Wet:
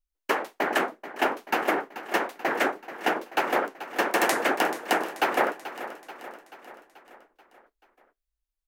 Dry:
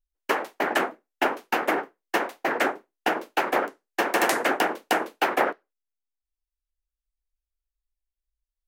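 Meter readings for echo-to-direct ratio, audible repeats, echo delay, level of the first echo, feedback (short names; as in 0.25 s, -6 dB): -12.0 dB, 5, 0.434 s, -13.5 dB, 56%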